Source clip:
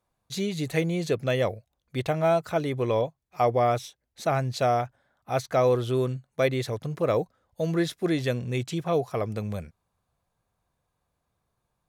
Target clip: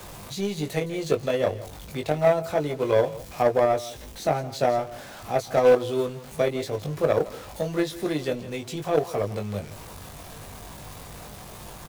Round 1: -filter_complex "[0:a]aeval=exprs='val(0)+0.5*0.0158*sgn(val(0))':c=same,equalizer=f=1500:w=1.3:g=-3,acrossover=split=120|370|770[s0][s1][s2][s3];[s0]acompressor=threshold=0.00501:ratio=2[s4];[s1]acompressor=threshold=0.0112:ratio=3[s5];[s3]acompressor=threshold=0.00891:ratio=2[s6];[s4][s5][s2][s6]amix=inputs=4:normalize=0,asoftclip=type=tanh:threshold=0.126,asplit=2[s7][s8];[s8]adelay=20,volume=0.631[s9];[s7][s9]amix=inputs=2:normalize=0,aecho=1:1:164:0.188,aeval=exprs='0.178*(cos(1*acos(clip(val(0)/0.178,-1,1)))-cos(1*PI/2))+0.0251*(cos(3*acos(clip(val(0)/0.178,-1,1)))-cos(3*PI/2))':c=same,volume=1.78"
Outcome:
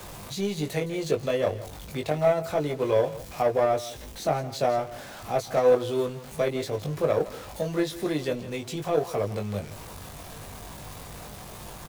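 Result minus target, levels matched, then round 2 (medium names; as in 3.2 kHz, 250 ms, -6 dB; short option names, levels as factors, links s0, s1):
saturation: distortion +18 dB
-filter_complex "[0:a]aeval=exprs='val(0)+0.5*0.0158*sgn(val(0))':c=same,equalizer=f=1500:w=1.3:g=-3,acrossover=split=120|370|770[s0][s1][s2][s3];[s0]acompressor=threshold=0.00501:ratio=2[s4];[s1]acompressor=threshold=0.0112:ratio=3[s5];[s3]acompressor=threshold=0.00891:ratio=2[s6];[s4][s5][s2][s6]amix=inputs=4:normalize=0,asoftclip=type=tanh:threshold=0.398,asplit=2[s7][s8];[s8]adelay=20,volume=0.631[s9];[s7][s9]amix=inputs=2:normalize=0,aecho=1:1:164:0.188,aeval=exprs='0.178*(cos(1*acos(clip(val(0)/0.178,-1,1)))-cos(1*PI/2))+0.0251*(cos(3*acos(clip(val(0)/0.178,-1,1)))-cos(3*PI/2))':c=same,volume=1.78"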